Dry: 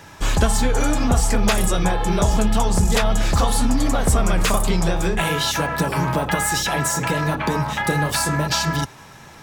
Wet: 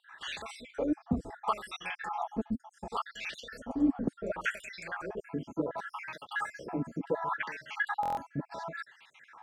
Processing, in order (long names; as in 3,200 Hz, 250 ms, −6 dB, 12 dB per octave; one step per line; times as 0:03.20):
time-frequency cells dropped at random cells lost 58%
LFO wah 0.69 Hz 250–2,700 Hz, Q 3.4
buffer that repeats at 0:08.01, samples 1,024, times 6